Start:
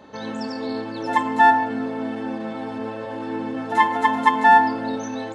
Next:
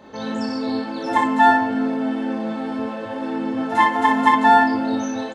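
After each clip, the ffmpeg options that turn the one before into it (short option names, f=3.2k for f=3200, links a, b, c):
-af "aecho=1:1:23|38|60:0.531|0.398|0.668"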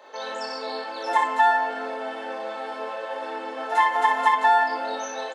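-af "highpass=f=480:w=0.5412,highpass=f=480:w=1.3066,acompressor=threshold=-16dB:ratio=3"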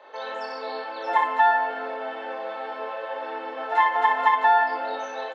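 -filter_complex "[0:a]acrossover=split=260 4100:gain=0.178 1 0.0891[a][b][c];[a][b][c]amix=inputs=3:normalize=0"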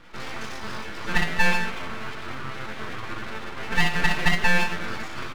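-af "aeval=exprs='abs(val(0))':c=same,volume=1.5dB"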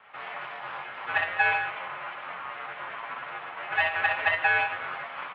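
-af "highpass=f=200:t=q:w=0.5412,highpass=f=200:t=q:w=1.307,lowpass=f=3.1k:t=q:w=0.5176,lowpass=f=3.1k:t=q:w=0.7071,lowpass=f=3.1k:t=q:w=1.932,afreqshift=-78,lowshelf=f=450:t=q:w=1.5:g=-13.5,volume=-1.5dB"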